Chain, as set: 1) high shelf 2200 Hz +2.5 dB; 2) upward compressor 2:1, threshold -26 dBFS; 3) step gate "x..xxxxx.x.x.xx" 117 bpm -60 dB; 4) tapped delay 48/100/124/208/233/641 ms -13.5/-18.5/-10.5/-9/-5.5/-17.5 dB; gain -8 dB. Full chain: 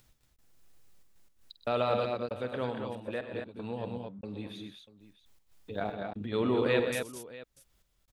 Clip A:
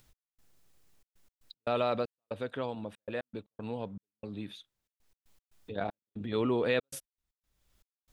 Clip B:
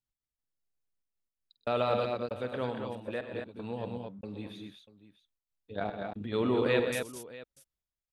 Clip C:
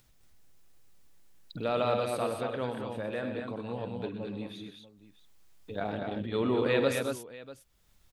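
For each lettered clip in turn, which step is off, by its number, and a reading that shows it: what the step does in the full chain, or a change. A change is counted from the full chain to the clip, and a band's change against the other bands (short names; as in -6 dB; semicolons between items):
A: 4, echo-to-direct -2.5 dB to none; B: 2, momentary loudness spread change +1 LU; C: 3, momentary loudness spread change +2 LU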